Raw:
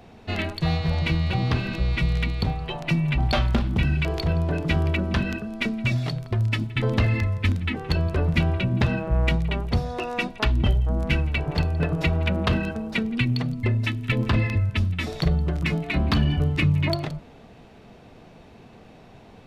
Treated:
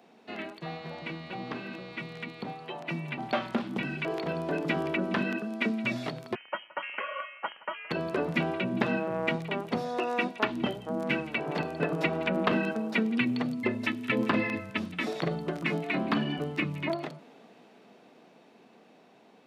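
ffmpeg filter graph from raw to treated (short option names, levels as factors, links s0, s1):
-filter_complex "[0:a]asettb=1/sr,asplit=3[s0][s1][s2];[s0]atrim=end=6.354[s3];[s1]atrim=start=6.35:end=7.91,asetpts=PTS-STARTPTS,afade=t=in:d=0.004:c=qsin,afade=t=out:st=1.556:d=0.004:c=qsin,highpass=850,aeval=exprs='(tanh(7.94*val(0)+0.4)-tanh(0.4))/7.94':c=same,lowpass=f=2700:t=q:w=0.5098,lowpass=f=2700:t=q:w=0.6013,lowpass=f=2700:t=q:w=0.9,lowpass=f=2700:t=q:w=2.563,afreqshift=-3200[s4];[s2]atrim=start=7.906[s5];[s3][s4]acrossfade=d=0.004:c1=hsin:c2=qsin[s6];[s6][s5]acrossfade=d=0.004:c1=qsin:c2=hsin,acrossover=split=2700[s7][s8];[s8]acompressor=threshold=0.00631:ratio=4:attack=1:release=60[s9];[s7][s9]amix=inputs=2:normalize=0,highpass=f=210:w=0.5412,highpass=f=210:w=1.3066,dynaudnorm=f=680:g=11:m=3.76,volume=0.398"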